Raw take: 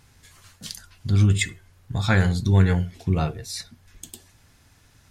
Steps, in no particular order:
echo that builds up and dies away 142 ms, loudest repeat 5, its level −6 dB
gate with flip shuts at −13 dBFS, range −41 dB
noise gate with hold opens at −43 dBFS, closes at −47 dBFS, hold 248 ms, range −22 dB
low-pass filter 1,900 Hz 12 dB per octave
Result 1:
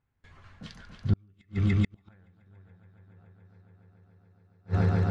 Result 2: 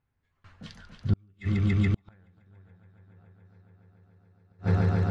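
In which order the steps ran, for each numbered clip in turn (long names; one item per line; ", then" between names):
echo that builds up and dies away, then noise gate with hold, then gate with flip, then low-pass filter
low-pass filter, then noise gate with hold, then echo that builds up and dies away, then gate with flip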